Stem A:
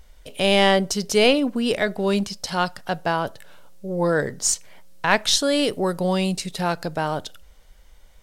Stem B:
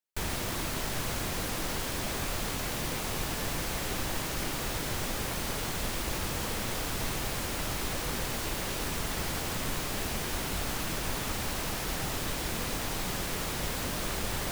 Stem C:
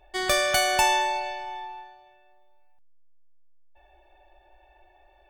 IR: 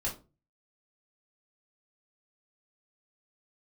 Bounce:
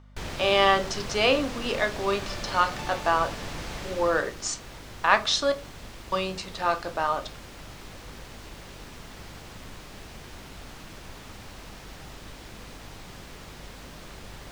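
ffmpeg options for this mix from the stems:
-filter_complex "[0:a]highpass=370,equalizer=f=1200:w=6:g=13,adynamicsmooth=sensitivity=7.5:basefreq=4000,volume=0.501,asplit=3[s0][s1][s2];[s0]atrim=end=5.52,asetpts=PTS-STARTPTS,afade=t=out:st=5.516:d=0.004:c=hsin[s3];[s1]atrim=start=5.52:end=6.12,asetpts=PTS-STARTPTS,volume=0[s4];[s2]atrim=start=6.12,asetpts=PTS-STARTPTS,afade=t=in:d=0.004:c=hsin[s5];[s3][s4][s5]concat=n=3:v=0:a=1,asplit=2[s6][s7];[s7]volume=0.422[s8];[1:a]volume=0.794,afade=t=out:st=3.78:d=0.64:silence=0.398107[s9];[2:a]adelay=2000,volume=0.1[s10];[3:a]atrim=start_sample=2205[s11];[s8][s11]afir=irnorm=-1:irlink=0[s12];[s6][s9][s10][s12]amix=inputs=4:normalize=0,acrossover=split=7000[s13][s14];[s14]acompressor=threshold=0.00126:ratio=4:attack=1:release=60[s15];[s13][s15]amix=inputs=2:normalize=0,aeval=exprs='val(0)+0.00316*(sin(2*PI*50*n/s)+sin(2*PI*2*50*n/s)/2+sin(2*PI*3*50*n/s)/3+sin(2*PI*4*50*n/s)/4+sin(2*PI*5*50*n/s)/5)':c=same"

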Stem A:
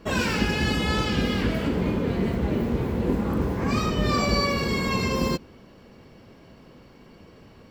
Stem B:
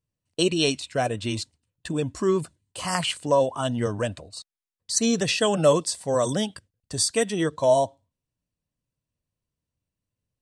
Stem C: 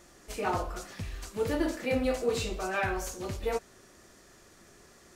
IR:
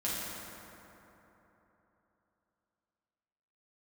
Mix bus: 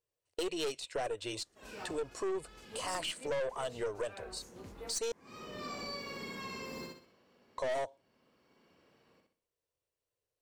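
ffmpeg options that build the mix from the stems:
-filter_complex "[0:a]highpass=f=410:p=1,adelay=1500,volume=0.188,afade=t=in:st=5.17:d=0.26:silence=0.354813,asplit=2[s0][s1];[s1]volume=0.668[s2];[1:a]lowshelf=f=310:t=q:w=3:g=-11.5,volume=0.841,asplit=3[s3][s4][s5];[s3]atrim=end=5.12,asetpts=PTS-STARTPTS,afade=t=out:st=5.116:d=0.004:c=hsin[s6];[s4]atrim=start=5.12:end=7.58,asetpts=PTS-STARTPTS,volume=0[s7];[s5]atrim=start=7.58,asetpts=PTS-STARTPTS,afade=t=in:d=0.004:c=hsin[s8];[s6][s7][s8]concat=n=3:v=0:a=1,asplit=2[s9][s10];[2:a]adelay=1350,volume=0.178[s11];[s10]apad=whole_len=405844[s12];[s0][s12]sidechaincompress=threshold=0.00891:ratio=3:attack=16:release=463[s13];[s2]aecho=0:1:63|126|189|252|315:1|0.37|0.137|0.0507|0.0187[s14];[s13][s9][s11][s14]amix=inputs=4:normalize=0,aeval=exprs='(tanh(12.6*val(0)+0.3)-tanh(0.3))/12.6':c=same,acompressor=threshold=0.01:ratio=2"

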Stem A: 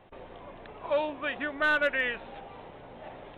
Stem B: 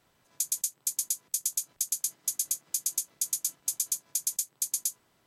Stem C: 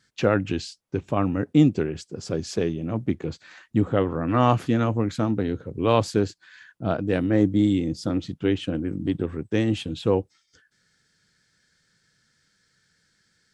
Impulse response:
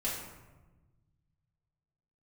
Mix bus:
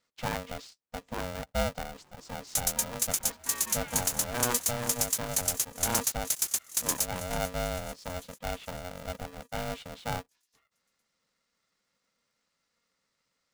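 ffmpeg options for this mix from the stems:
-filter_complex "[0:a]adelay=1850,volume=0.133,asplit=2[s0][s1];[s1]volume=0.282[s2];[1:a]acrusher=bits=5:mix=0:aa=0.000001,adelay=2150,volume=1.12,asplit=2[s3][s4];[s4]volume=0.15[s5];[2:a]volume=0.237[s6];[s2][s5]amix=inputs=2:normalize=0,aecho=0:1:443|886|1329|1772|2215|2658|3101|3544|3987:1|0.58|0.336|0.195|0.113|0.0656|0.0381|0.0221|0.0128[s7];[s0][s3][s6][s7]amix=inputs=4:normalize=0,aeval=exprs='val(0)*sgn(sin(2*PI*360*n/s))':c=same"

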